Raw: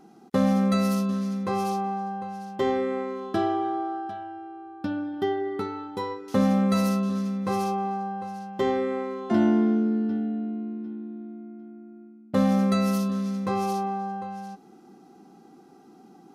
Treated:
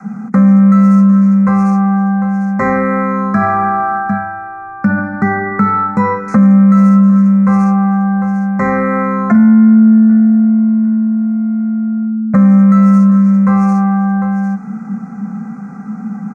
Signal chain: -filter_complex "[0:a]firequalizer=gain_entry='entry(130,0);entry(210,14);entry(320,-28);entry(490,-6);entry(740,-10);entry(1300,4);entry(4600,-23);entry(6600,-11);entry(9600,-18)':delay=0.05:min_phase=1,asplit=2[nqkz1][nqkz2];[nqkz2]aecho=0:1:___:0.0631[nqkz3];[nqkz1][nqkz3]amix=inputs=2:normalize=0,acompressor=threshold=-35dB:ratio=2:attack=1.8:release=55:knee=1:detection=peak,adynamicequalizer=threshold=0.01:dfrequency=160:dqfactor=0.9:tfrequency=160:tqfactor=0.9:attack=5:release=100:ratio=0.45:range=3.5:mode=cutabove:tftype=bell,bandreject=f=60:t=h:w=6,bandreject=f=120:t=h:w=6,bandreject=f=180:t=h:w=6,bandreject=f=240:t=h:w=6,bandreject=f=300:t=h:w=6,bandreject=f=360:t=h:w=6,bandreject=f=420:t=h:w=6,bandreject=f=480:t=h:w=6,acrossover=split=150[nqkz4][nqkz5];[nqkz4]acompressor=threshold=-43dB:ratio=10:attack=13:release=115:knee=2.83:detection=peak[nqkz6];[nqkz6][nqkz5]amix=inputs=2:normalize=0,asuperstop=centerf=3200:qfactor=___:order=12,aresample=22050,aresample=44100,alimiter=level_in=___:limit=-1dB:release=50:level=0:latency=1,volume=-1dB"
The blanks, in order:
77, 1.9, 25.5dB